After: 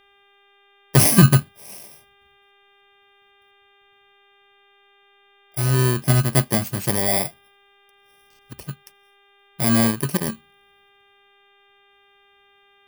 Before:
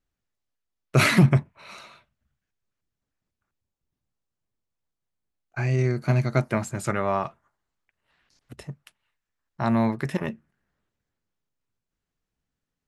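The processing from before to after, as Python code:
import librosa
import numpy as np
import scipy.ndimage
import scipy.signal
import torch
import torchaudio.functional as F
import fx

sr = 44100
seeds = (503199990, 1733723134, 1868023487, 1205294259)

y = fx.bit_reversed(x, sr, seeds[0], block=32)
y = fx.dmg_buzz(y, sr, base_hz=400.0, harmonics=9, level_db=-62.0, tilt_db=-1, odd_only=False)
y = y * 10.0 ** (4.5 / 20.0)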